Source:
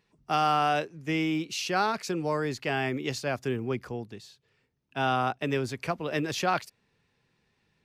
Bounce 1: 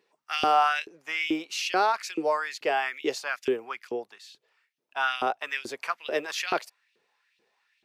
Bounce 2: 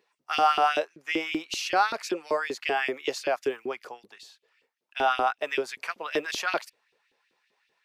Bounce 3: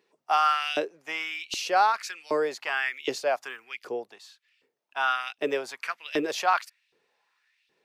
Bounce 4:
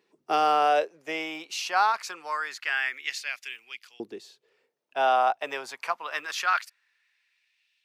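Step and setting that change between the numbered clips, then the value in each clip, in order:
LFO high-pass, rate: 2.3, 5.2, 1.3, 0.25 Hz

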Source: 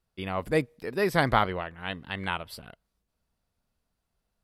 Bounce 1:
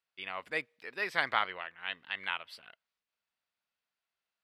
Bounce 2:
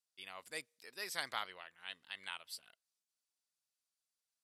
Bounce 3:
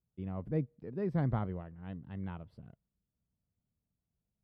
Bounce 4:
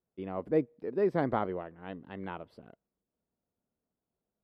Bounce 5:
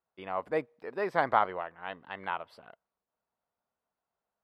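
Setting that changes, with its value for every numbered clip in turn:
band-pass, frequency: 2400, 7300, 130, 340, 860 Hz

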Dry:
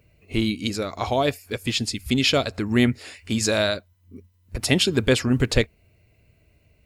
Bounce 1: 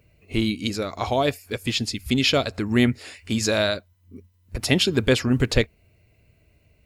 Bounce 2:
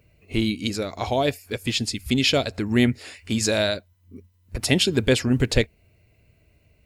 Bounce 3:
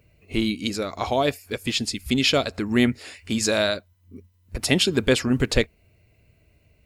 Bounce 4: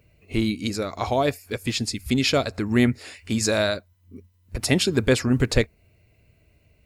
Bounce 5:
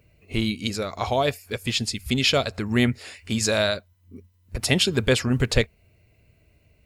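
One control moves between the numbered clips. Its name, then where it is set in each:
dynamic EQ, frequency: 8500, 1200, 110, 3100, 300 Hz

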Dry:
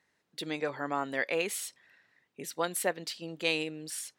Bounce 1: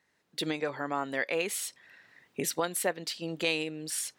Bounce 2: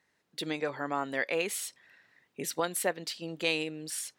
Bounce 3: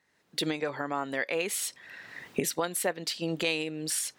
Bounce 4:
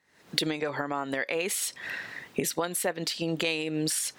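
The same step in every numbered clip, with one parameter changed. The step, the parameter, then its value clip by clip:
recorder AGC, rising by: 13, 5.1, 33, 88 dB/s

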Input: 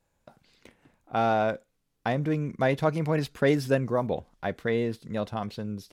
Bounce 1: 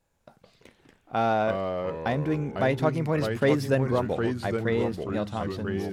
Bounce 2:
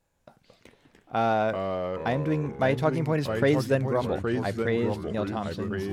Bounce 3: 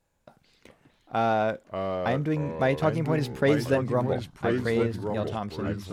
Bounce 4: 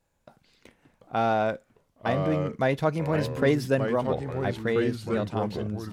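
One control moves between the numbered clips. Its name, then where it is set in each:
echoes that change speed, time: 0.111, 0.171, 0.372, 0.687 s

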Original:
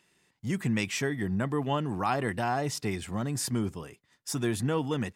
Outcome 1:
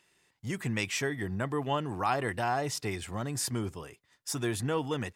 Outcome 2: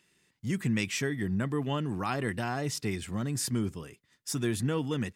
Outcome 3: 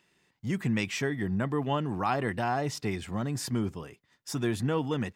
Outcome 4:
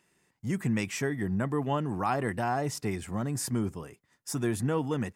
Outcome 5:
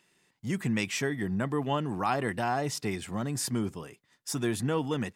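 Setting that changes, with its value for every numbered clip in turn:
bell, frequency: 200, 790, 10000, 3600, 66 Hz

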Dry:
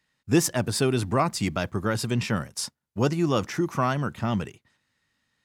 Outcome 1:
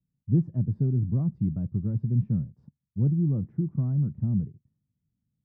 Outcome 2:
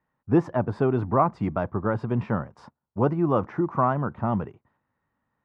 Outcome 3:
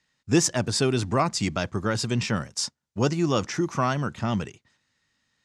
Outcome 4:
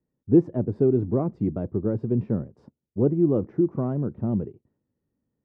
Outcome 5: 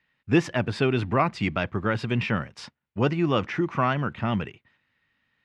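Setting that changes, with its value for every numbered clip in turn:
synth low-pass, frequency: 160, 1000, 6700, 400, 2600 Hz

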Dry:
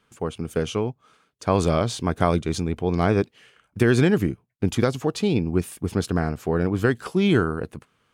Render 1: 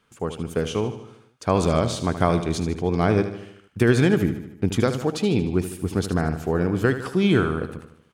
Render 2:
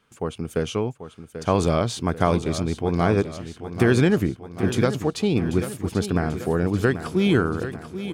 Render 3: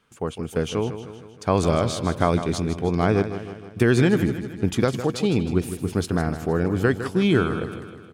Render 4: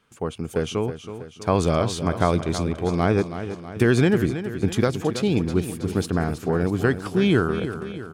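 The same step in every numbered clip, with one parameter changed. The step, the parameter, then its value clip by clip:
feedback echo, time: 76, 788, 156, 323 ms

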